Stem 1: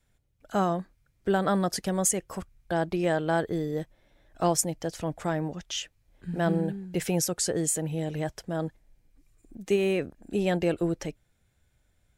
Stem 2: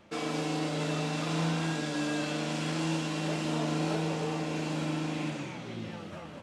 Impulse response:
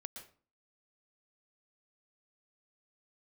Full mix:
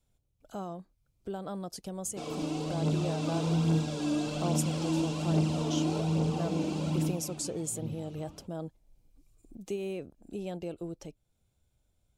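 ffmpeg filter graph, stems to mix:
-filter_complex "[0:a]acompressor=threshold=-46dB:ratio=1.5,volume=-4dB[a];[1:a]equalizer=f=65:w=0.39:g=11,aphaser=in_gain=1:out_gain=1:delay=3.5:decay=0.47:speed=1.2:type=triangular,adelay=2050,volume=-7dB,afade=t=out:st=6.94:d=0.26:silence=0.375837[b];[a][b]amix=inputs=2:normalize=0,equalizer=f=1.8k:w=2.2:g=-13.5,dynaudnorm=f=430:g=13:m=4dB"

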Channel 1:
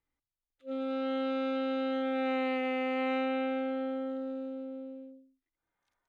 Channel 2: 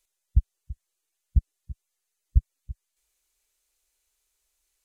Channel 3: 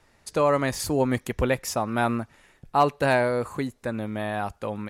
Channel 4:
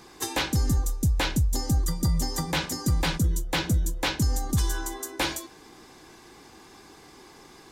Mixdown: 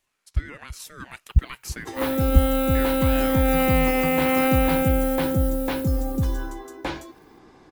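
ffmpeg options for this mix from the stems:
-filter_complex "[0:a]acrusher=bits=6:mode=log:mix=0:aa=0.000001,aexciter=amount=5.9:drive=4.5:freq=8.8k,adelay=1300,volume=1dB[a];[1:a]volume=-4dB[b];[2:a]highpass=930,alimiter=limit=-19dB:level=0:latency=1:release=61,aeval=exprs='val(0)*sin(2*PI*660*n/s+660*0.4/2.2*sin(2*PI*2.2*n/s))':c=same,volume=-9.5dB[c];[3:a]lowpass=f=1.2k:p=1,adelay=1650,volume=-8dB[d];[a][b][c][d]amix=inputs=4:normalize=0,dynaudnorm=f=200:g=9:m=9dB"

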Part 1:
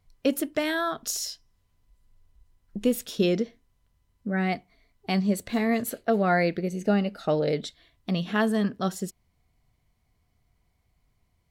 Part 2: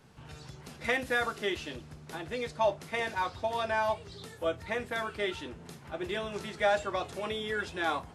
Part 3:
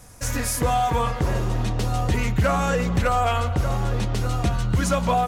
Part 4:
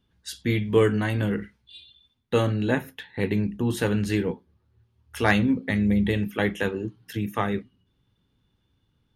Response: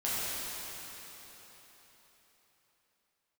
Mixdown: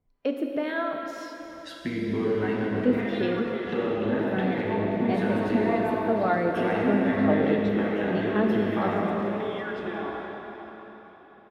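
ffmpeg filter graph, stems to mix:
-filter_complex "[0:a]acrossover=split=510[a][b];[a]aeval=exprs='val(0)*(1-0.7/2+0.7/2*cos(2*PI*2*n/s))':c=same[c];[b]aeval=exprs='val(0)*(1-0.7/2-0.7/2*cos(2*PI*2*n/s))':c=same[d];[c][d]amix=inputs=2:normalize=0,volume=-12.5dB,asplit=2[e][f];[f]volume=-9dB[g];[1:a]acompressor=threshold=-37dB:ratio=4,adelay=2100,volume=-2dB,asplit=2[h][i];[i]volume=-11dB[j];[3:a]acompressor=threshold=-29dB:ratio=6,adelay=1400,volume=2dB,asplit=2[k][l];[l]volume=-14dB[m];[h][k]amix=inputs=2:normalize=0,acrossover=split=610[n][o];[n]aeval=exprs='val(0)*(1-0.7/2+0.7/2*cos(2*PI*1.4*n/s))':c=same[p];[o]aeval=exprs='val(0)*(1-0.7/2-0.7/2*cos(2*PI*1.4*n/s))':c=same[q];[p][q]amix=inputs=2:normalize=0,acompressor=threshold=-43dB:ratio=6,volume=0dB[r];[4:a]atrim=start_sample=2205[s];[g][j][m]amix=inputs=3:normalize=0[t];[t][s]afir=irnorm=-1:irlink=0[u];[e][r][u]amix=inputs=3:normalize=0,firequalizer=gain_entry='entry(100,0);entry(240,13);entry(6900,-13)':delay=0.05:min_phase=1"

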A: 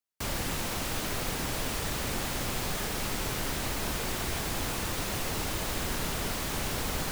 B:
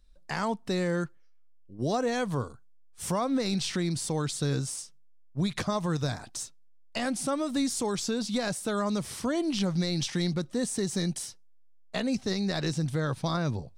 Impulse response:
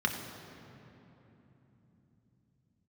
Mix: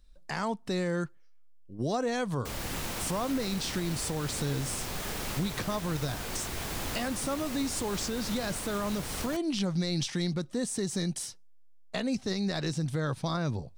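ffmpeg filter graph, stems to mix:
-filter_complex "[0:a]adelay=2250,volume=-2.5dB[a];[1:a]volume=2dB[b];[a][b]amix=inputs=2:normalize=0,alimiter=limit=-22dB:level=0:latency=1:release=378"

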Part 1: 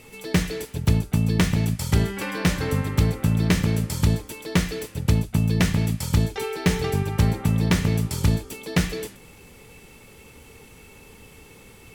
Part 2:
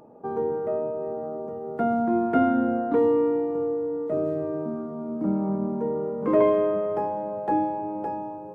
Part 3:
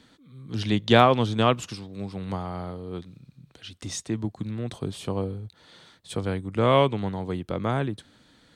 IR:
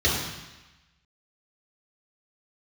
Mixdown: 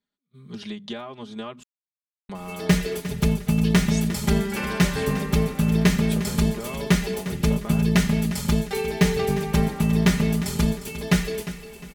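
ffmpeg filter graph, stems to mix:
-filter_complex "[0:a]adelay=2350,volume=-2dB,asplit=2[a][b];[b]volume=-13.5dB[c];[2:a]bandreject=f=50:t=h:w=6,bandreject=f=100:t=h:w=6,bandreject=f=150:t=h:w=6,bandreject=f=200:t=h:w=6,bandreject=f=250:t=h:w=6,agate=range=-30dB:threshold=-48dB:ratio=16:detection=peak,acompressor=threshold=-31dB:ratio=12,volume=-2.5dB,asplit=3[d][e][f];[d]atrim=end=1.63,asetpts=PTS-STARTPTS,afade=t=out:st=1.626:d=0.004:c=hsin[g];[e]atrim=start=1.63:end=2.29,asetpts=PTS-STARTPTS,volume=0[h];[f]atrim=start=2.29,asetpts=PTS-STARTPTS,afade=t=in:d=0.004:c=hsin[i];[g][h][i]concat=n=3:v=0:a=1[j];[c]aecho=0:1:354|708|1062|1416|1770:1|0.32|0.102|0.0328|0.0105[k];[a][j][k]amix=inputs=3:normalize=0,aecho=1:1:4.9:0.92"

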